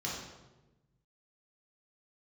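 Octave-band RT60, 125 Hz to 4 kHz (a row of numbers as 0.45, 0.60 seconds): 1.9, 1.4, 1.2, 0.95, 0.85, 0.75 seconds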